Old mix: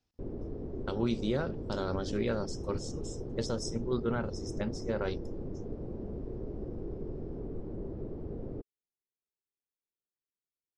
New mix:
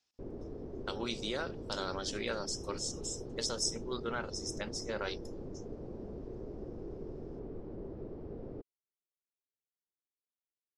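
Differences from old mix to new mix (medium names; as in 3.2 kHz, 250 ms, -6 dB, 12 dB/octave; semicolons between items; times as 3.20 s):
speech: add tilt EQ +3 dB/octave; master: add bass shelf 330 Hz -7 dB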